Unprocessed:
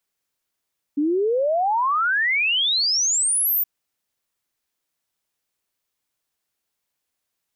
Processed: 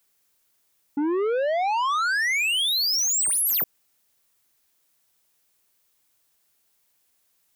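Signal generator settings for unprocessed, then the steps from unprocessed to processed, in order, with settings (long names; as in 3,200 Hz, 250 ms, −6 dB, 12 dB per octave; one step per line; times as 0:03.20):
exponential sine sweep 280 Hz → 15,000 Hz 2.67 s −17.5 dBFS
high-shelf EQ 7,500 Hz +7 dB
in parallel at +1.5 dB: brickwall limiter −25 dBFS
on the sum: soft clipping −22 dBFS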